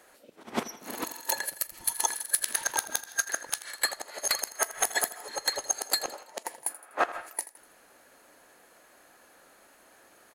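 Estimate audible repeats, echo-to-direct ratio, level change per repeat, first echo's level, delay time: 3, -15.0 dB, -6.5 dB, -16.0 dB, 82 ms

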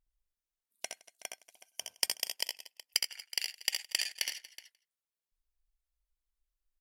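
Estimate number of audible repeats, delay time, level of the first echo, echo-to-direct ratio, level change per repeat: 4, 66 ms, -5.5 dB, -3.5 dB, no steady repeat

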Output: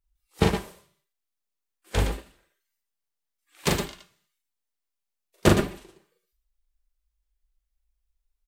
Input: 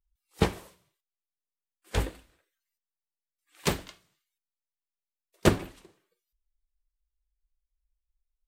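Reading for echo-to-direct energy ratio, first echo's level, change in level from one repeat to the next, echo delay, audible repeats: -1.5 dB, -3.0 dB, no steady repeat, 40 ms, 2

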